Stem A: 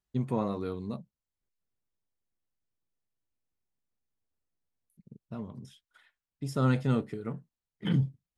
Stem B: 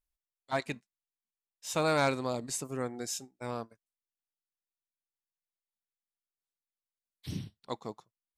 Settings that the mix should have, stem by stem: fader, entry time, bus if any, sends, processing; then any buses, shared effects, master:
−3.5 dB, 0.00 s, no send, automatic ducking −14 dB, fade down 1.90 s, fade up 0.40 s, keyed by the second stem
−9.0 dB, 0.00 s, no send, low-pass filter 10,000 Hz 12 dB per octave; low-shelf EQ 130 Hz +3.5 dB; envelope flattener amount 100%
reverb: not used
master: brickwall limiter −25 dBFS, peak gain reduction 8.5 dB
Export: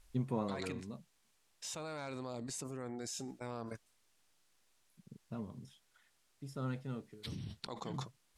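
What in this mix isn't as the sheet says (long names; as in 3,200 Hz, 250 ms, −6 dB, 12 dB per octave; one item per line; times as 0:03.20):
stem B −9.0 dB → −18.0 dB
master: missing brickwall limiter −25 dBFS, peak gain reduction 8.5 dB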